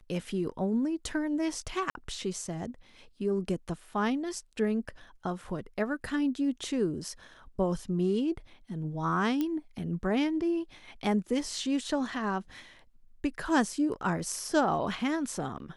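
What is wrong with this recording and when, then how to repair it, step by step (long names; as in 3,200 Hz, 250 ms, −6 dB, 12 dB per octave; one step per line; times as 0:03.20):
0:01.90–0:01.95: drop-out 51 ms
0:09.41: click −18 dBFS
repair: click removal
repair the gap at 0:01.90, 51 ms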